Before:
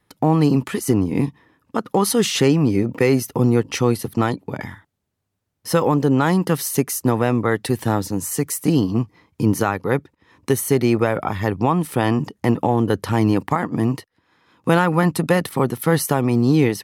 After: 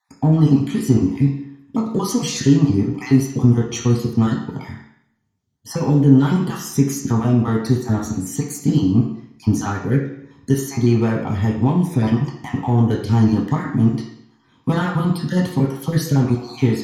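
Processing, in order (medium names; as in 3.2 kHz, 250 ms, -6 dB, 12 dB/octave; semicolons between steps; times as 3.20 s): random holes in the spectrogram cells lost 35%; in parallel at -6 dB: saturation -19.5 dBFS, distortion -7 dB; on the sum: reverberation RT60 0.70 s, pre-delay 3 ms, DRR -3 dB; trim -11 dB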